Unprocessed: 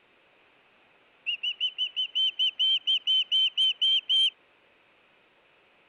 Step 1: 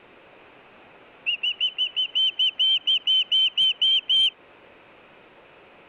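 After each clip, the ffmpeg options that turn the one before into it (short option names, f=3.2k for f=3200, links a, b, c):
-filter_complex "[0:a]highshelf=f=2.4k:g=-11.5,asplit=2[a][b];[b]acompressor=threshold=-41dB:ratio=6,volume=-1.5dB[c];[a][c]amix=inputs=2:normalize=0,volume=9dB"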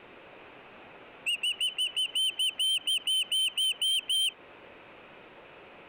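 -af "asoftclip=type=tanh:threshold=-25.5dB"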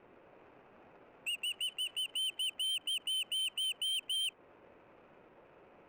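-af "adynamicsmooth=sensitivity=6:basefreq=1.3k,volume=-7dB"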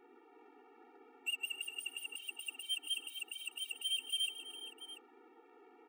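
-af "aecho=1:1:132|255|442|688:0.106|0.188|0.158|0.188,afftfilt=real='re*eq(mod(floor(b*sr/1024/240),2),1)':imag='im*eq(mod(floor(b*sr/1024/240),2),1)':win_size=1024:overlap=0.75,volume=1dB"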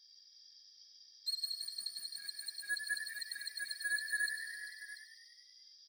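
-filter_complex "[0:a]afftfilt=real='real(if(lt(b,272),68*(eq(floor(b/68),0)*3+eq(floor(b/68),1)*2+eq(floor(b/68),2)*1+eq(floor(b/68),3)*0)+mod(b,68),b),0)':imag='imag(if(lt(b,272),68*(eq(floor(b/68),0)*3+eq(floor(b/68),1)*2+eq(floor(b/68),2)*1+eq(floor(b/68),3)*0)+mod(b,68),b),0)':win_size=2048:overlap=0.75,asplit=9[a][b][c][d][e][f][g][h][i];[b]adelay=97,afreqshift=48,volume=-8dB[j];[c]adelay=194,afreqshift=96,volume=-12dB[k];[d]adelay=291,afreqshift=144,volume=-16dB[l];[e]adelay=388,afreqshift=192,volume=-20dB[m];[f]adelay=485,afreqshift=240,volume=-24.1dB[n];[g]adelay=582,afreqshift=288,volume=-28.1dB[o];[h]adelay=679,afreqshift=336,volume=-32.1dB[p];[i]adelay=776,afreqshift=384,volume=-36.1dB[q];[a][j][k][l][m][n][o][p][q]amix=inputs=9:normalize=0"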